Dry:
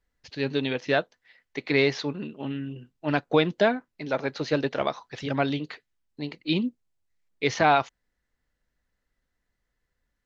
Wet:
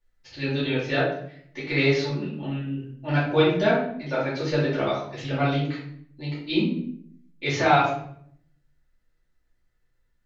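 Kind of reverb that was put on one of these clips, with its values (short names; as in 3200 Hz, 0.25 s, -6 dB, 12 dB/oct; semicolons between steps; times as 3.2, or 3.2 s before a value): shoebox room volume 100 m³, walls mixed, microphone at 2.5 m; gain -8 dB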